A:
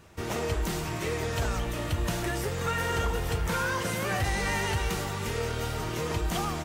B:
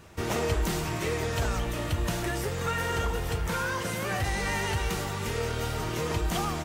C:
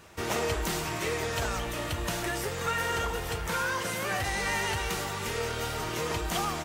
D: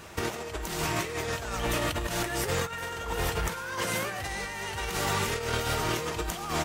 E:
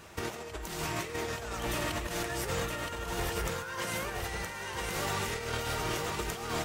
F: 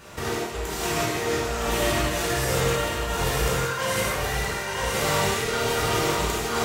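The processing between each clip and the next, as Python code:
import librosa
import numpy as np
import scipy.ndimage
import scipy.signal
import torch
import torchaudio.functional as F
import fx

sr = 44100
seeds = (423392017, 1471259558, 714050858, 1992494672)

y1 = fx.rider(x, sr, range_db=10, speed_s=2.0)
y2 = fx.low_shelf(y1, sr, hz=330.0, db=-8.0)
y2 = y2 * 10.0 ** (1.5 / 20.0)
y3 = fx.over_compress(y2, sr, threshold_db=-34.0, ratio=-0.5)
y3 = y3 * 10.0 ** (3.5 / 20.0)
y4 = y3 + 10.0 ** (-4.5 / 20.0) * np.pad(y3, (int(969 * sr / 1000.0), 0))[:len(y3)]
y4 = y4 * 10.0 ** (-5.0 / 20.0)
y5 = fx.rev_gated(y4, sr, seeds[0], gate_ms=200, shape='flat', drr_db=-6.0)
y5 = y5 * 10.0 ** (2.5 / 20.0)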